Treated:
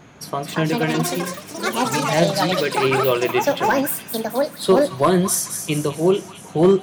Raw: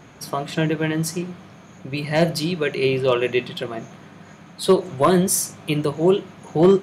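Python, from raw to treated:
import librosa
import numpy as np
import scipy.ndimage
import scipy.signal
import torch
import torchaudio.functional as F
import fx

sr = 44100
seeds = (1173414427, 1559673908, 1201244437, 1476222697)

p1 = fx.echo_stepped(x, sr, ms=213, hz=1200.0, octaves=0.7, feedback_pct=70, wet_db=-11.5)
p2 = fx.echo_pitch(p1, sr, ms=342, semitones=7, count=3, db_per_echo=-3.0)
y = p2 + fx.echo_wet_highpass(p2, sr, ms=216, feedback_pct=46, hz=3500.0, wet_db=-7.0, dry=0)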